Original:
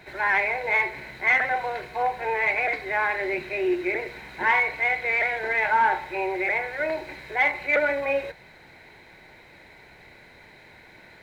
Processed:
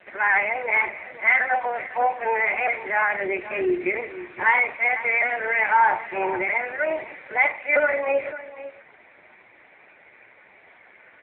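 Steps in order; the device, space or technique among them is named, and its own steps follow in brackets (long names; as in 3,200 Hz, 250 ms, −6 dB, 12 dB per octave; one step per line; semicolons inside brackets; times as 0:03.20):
satellite phone (band-pass filter 350–3,100 Hz; single-tap delay 502 ms −14.5 dB; level +4.5 dB; AMR narrowband 5.15 kbit/s 8,000 Hz)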